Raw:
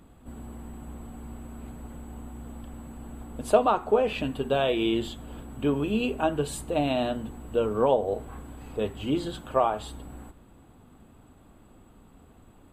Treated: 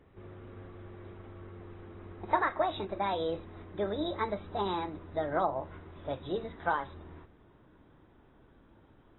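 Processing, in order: speed glide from 156% -> 121%; gain -7 dB; AAC 16 kbps 22050 Hz

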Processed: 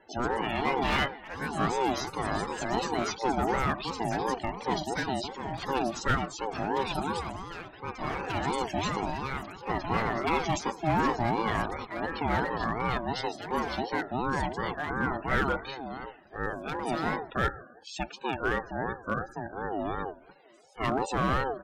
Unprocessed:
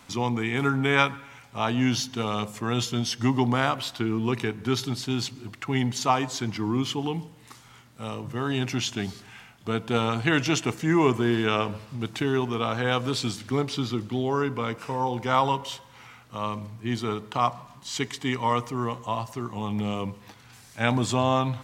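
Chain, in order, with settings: dynamic EQ 680 Hz, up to +7 dB, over -44 dBFS, Q 3.7; loudest bins only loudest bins 32; hard clip -17 dBFS, distortion -14 dB; echoes that change speed 0.147 s, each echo +4 st, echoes 3, each echo -6 dB; ring modulator with a swept carrier 570 Hz, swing 20%, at 2.8 Hz; gain -1.5 dB

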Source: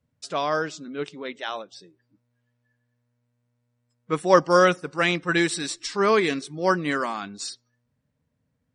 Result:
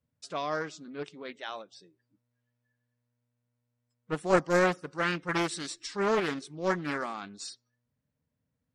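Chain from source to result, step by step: Doppler distortion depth 0.5 ms; gain -7.5 dB

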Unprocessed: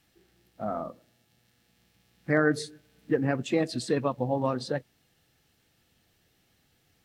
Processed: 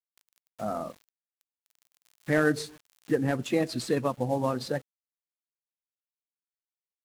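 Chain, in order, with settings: CVSD 64 kbps; sample gate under -51.5 dBFS; mismatched tape noise reduction encoder only

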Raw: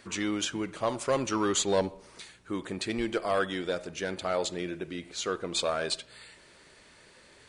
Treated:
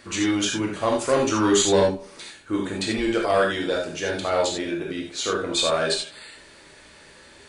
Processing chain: non-linear reverb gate 0.11 s flat, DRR -1 dB; gain +4 dB

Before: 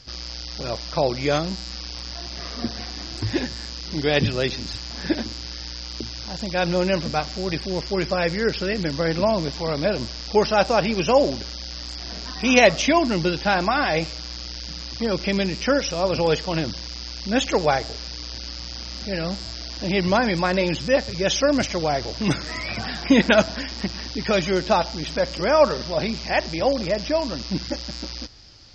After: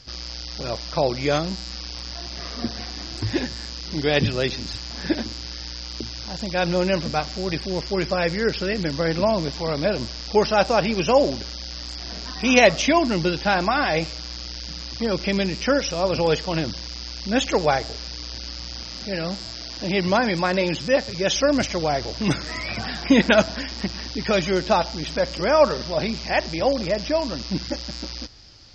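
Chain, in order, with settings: 18.83–21.36 HPF 99 Hz 6 dB/oct

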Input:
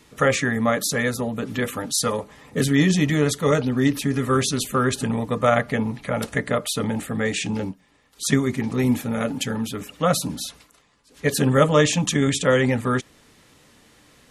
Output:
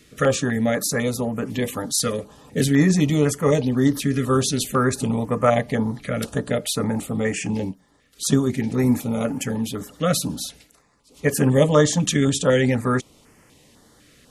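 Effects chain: stepped notch 4 Hz 910–3800 Hz; gain +1.5 dB

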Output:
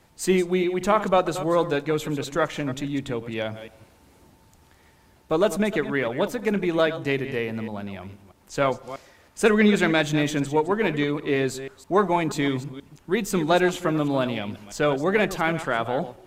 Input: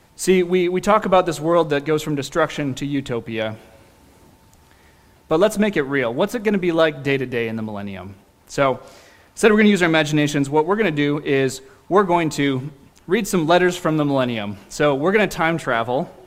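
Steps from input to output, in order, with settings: reverse delay 0.16 s, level -12 dB; gain -5 dB

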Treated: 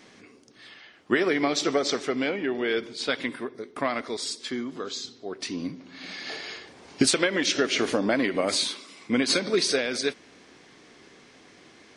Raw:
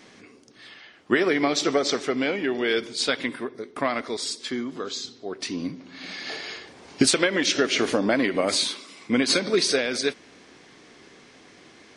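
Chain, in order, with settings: 2.29–3.1 high shelf 5200 Hz -11.5 dB; gain -2 dB

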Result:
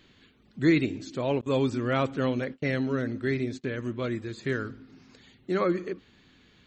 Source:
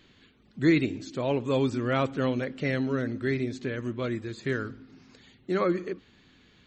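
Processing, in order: 1.41–3.64 gate -36 dBFS, range -30 dB

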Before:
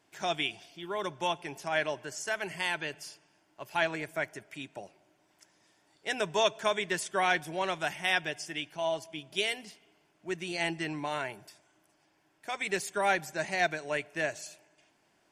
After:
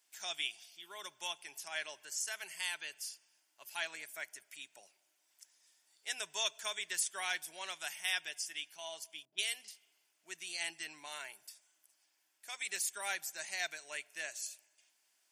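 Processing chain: differentiator; 9.25–9.68 low-pass opened by the level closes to 340 Hz, open at -38.5 dBFS; gain +3 dB

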